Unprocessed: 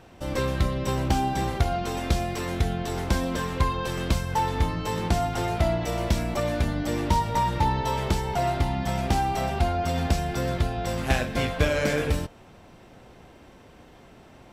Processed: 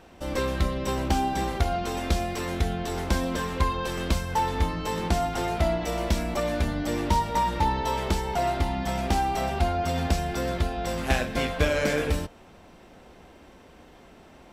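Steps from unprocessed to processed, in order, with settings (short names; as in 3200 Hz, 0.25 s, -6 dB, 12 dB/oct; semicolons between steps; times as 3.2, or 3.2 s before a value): bell 120 Hz -15 dB 0.3 oct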